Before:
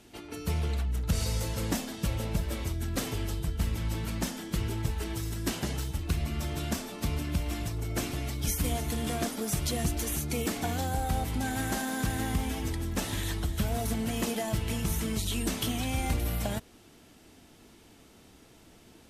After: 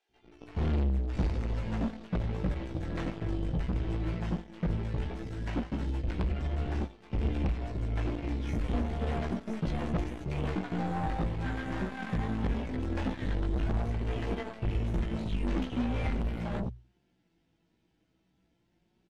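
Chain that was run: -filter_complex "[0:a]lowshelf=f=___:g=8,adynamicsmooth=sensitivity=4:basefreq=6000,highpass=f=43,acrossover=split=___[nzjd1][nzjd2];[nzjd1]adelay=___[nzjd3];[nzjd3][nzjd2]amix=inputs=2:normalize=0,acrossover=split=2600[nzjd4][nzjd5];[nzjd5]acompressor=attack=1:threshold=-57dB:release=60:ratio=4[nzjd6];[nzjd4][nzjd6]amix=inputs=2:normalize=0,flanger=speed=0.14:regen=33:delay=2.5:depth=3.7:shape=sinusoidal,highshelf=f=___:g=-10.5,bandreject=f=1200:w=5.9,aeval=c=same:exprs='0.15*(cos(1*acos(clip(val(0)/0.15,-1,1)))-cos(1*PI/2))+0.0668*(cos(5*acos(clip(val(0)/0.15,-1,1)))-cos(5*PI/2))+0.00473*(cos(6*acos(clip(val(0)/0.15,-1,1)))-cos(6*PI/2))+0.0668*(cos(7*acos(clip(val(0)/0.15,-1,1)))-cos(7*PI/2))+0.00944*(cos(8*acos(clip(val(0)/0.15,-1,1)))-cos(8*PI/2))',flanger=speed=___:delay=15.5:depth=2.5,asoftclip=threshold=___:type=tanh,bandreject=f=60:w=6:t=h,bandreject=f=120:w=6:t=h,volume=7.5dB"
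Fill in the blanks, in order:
200, 540, 90, 10000, 0.77, -32dB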